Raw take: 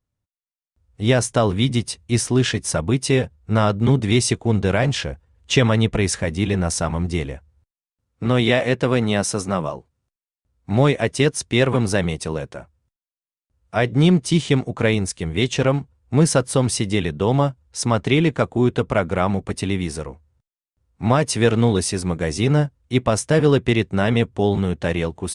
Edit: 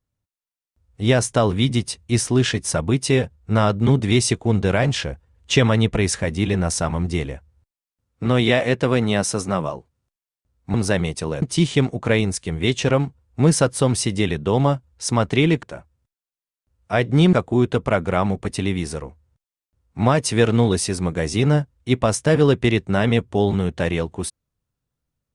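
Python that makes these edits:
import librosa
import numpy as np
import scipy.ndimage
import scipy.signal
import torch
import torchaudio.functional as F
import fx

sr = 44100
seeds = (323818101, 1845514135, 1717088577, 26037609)

y = fx.edit(x, sr, fx.cut(start_s=10.74, length_s=1.04),
    fx.move(start_s=12.46, length_s=1.7, to_s=18.37), tone=tone)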